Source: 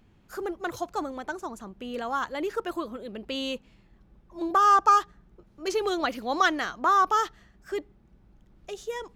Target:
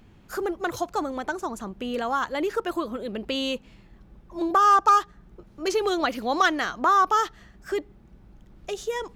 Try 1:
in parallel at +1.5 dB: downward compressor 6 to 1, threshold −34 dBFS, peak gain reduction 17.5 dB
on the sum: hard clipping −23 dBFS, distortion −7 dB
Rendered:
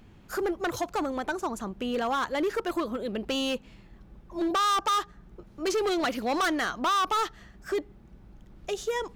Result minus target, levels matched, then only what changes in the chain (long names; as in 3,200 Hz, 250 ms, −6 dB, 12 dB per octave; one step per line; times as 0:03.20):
hard clipping: distortion +25 dB
change: hard clipping −11 dBFS, distortion −32 dB